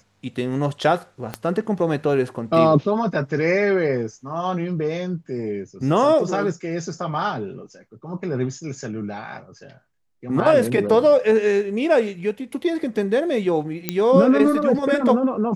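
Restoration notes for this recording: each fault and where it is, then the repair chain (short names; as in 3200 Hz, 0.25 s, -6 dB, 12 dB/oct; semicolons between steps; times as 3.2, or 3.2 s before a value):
1.34 pop -12 dBFS
13.89 pop -5 dBFS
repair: de-click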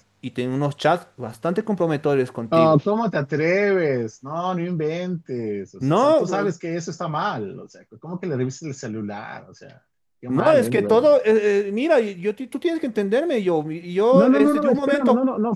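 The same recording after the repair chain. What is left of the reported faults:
1.34 pop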